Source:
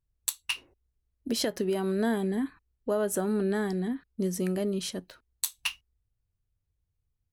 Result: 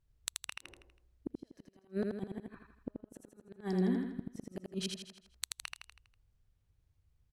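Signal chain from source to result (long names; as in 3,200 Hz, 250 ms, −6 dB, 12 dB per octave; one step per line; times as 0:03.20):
high-shelf EQ 8,300 Hz −11.5 dB
downward compressor 6 to 1, threshold −35 dBFS, peak gain reduction 11.5 dB
gate with flip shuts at −30 dBFS, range −42 dB
on a send: repeating echo 81 ms, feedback 49%, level −3.5 dB
on the sum: level +5 dB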